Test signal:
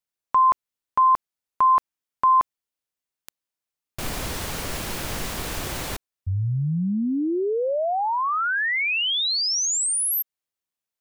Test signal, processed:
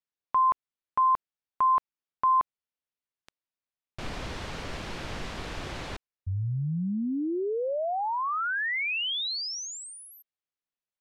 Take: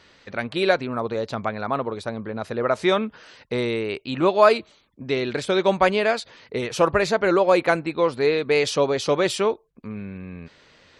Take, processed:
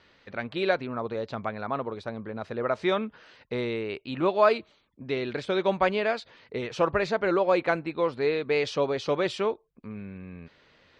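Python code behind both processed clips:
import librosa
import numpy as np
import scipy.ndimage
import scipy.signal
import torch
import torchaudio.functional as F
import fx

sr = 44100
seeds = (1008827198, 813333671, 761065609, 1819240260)

y = scipy.signal.sosfilt(scipy.signal.butter(2, 4300.0, 'lowpass', fs=sr, output='sos'), x)
y = F.gain(torch.from_numpy(y), -5.5).numpy()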